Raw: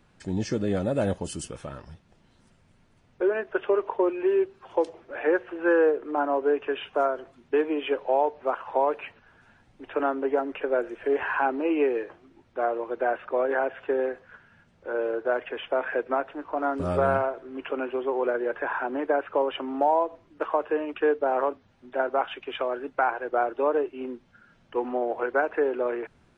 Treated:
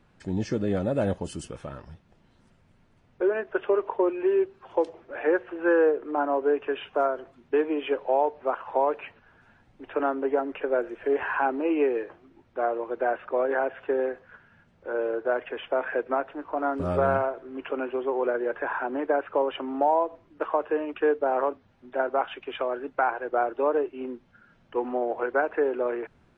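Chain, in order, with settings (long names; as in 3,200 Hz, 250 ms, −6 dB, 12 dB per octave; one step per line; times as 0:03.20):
high-shelf EQ 4,400 Hz −8 dB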